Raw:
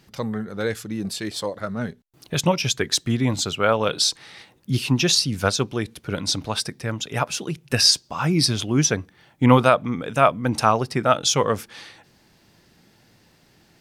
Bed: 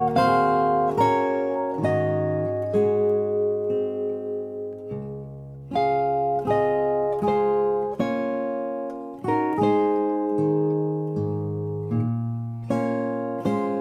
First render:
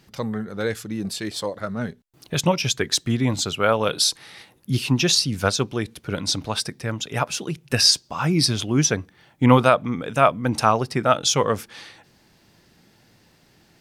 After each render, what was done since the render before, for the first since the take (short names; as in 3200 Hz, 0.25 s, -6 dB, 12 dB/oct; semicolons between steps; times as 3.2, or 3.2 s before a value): 3.54–4.74 bell 11000 Hz +12 dB 0.26 oct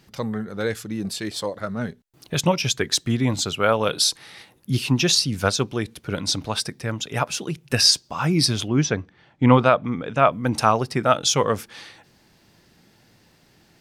8.68–10.32 air absorption 120 m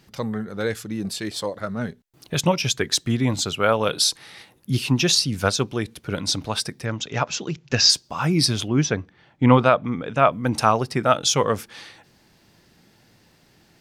6.85–7.9 careless resampling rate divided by 3×, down none, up filtered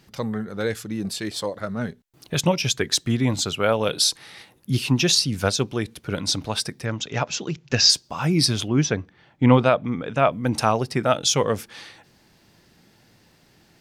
dynamic EQ 1200 Hz, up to -5 dB, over -32 dBFS, Q 1.8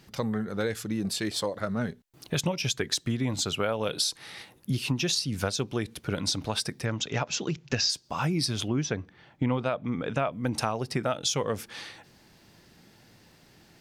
compressor 5:1, threshold -25 dBFS, peak gain reduction 13.5 dB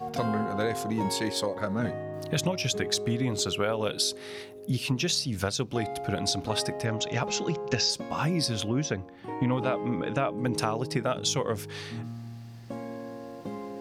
add bed -13.5 dB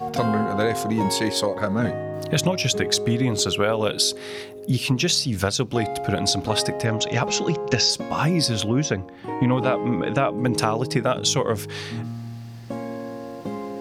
gain +6.5 dB